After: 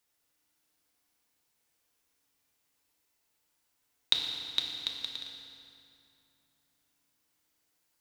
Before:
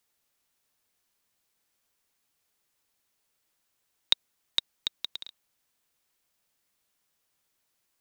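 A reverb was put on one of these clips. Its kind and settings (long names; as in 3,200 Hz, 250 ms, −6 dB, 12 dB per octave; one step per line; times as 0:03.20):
feedback delay network reverb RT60 2.7 s, low-frequency decay 1.25×, high-frequency decay 0.75×, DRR −0.5 dB
level −3 dB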